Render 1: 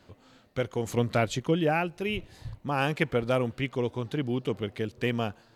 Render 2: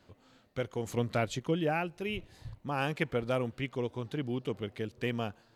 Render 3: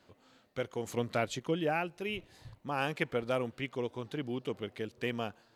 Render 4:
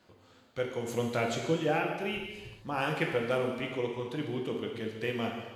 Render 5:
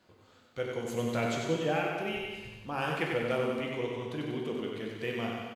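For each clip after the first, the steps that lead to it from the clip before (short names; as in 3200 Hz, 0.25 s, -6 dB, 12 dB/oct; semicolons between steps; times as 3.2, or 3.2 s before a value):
ending taper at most 580 dB/s; gain -5 dB
low shelf 140 Hz -10 dB
non-linear reverb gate 0.47 s falling, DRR 0.5 dB
feedback echo 94 ms, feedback 55%, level -5.5 dB; gain -2 dB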